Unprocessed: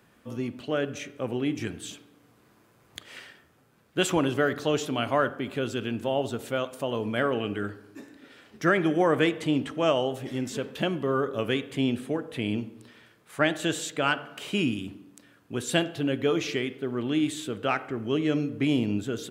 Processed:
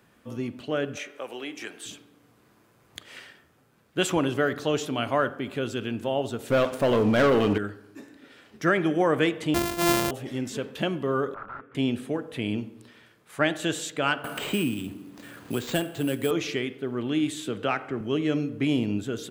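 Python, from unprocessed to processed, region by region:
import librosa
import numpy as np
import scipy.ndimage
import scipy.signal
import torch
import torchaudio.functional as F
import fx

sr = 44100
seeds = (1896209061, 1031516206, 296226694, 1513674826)

y = fx.chain(x, sr, fx.highpass(hz=550.0, slope=12),
    fx.band_squash(depth_pct=70), at=(0.97, 1.86))
y = fx.chain(y, sr, fx.high_shelf(hz=3300.0, db=-10.0),
    fx.leveller(passes=3), at=(6.5, 7.58))
y = fx.chain(y, sr, fx.sample_sort(block=128),
    fx.high_shelf(hz=8300.0, db=7.5),
    fx.sustainer(db_per_s=62.0), at=(9.54, 10.11))
y = fx.chain(y, sr, fx.overflow_wrap(gain_db=26.0),
    fx.ladder_lowpass(hz=1400.0, resonance_pct=85),
    fx.band_squash(depth_pct=40), at=(11.34, 11.75))
y = fx.chain(y, sr, fx.cvsd(bps=64000),
    fx.resample_bad(factor=4, down='filtered', up='hold'),
    fx.band_squash(depth_pct=70), at=(14.24, 16.31))
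y = fx.chain(y, sr, fx.high_shelf(hz=11000.0, db=-9.5),
    fx.band_squash(depth_pct=40), at=(17.47, 18.01))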